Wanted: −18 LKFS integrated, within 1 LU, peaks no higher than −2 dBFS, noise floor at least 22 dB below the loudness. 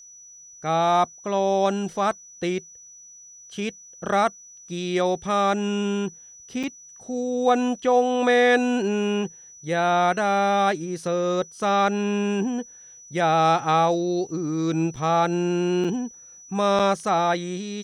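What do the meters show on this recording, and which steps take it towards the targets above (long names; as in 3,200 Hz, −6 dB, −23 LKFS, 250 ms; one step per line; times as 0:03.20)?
number of dropouts 4; longest dropout 5.7 ms; interfering tone 5,900 Hz; level of the tone −44 dBFS; integrated loudness −23.0 LKFS; sample peak −8.0 dBFS; target loudness −18.0 LKFS
→ repair the gap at 0:06.63/0:14.96/0:15.84/0:16.79, 5.7 ms
notch filter 5,900 Hz, Q 30
level +5 dB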